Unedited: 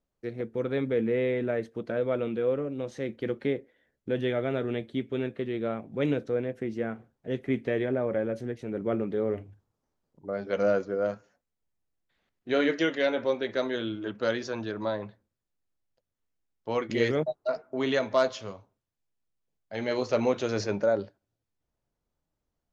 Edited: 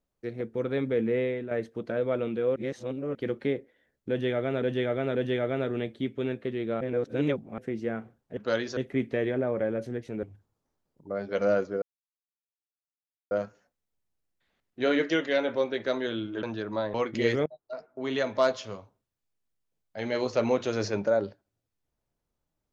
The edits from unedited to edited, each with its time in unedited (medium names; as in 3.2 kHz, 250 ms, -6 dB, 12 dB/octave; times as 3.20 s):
1.18–1.51 s: fade out, to -9.5 dB
2.56–3.15 s: reverse
4.09–4.62 s: loop, 3 plays
5.75–6.52 s: reverse
8.77–9.41 s: delete
11.00 s: insert silence 1.49 s
14.12–14.52 s: move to 7.31 s
15.03–16.70 s: delete
17.22–18.16 s: fade in, from -23 dB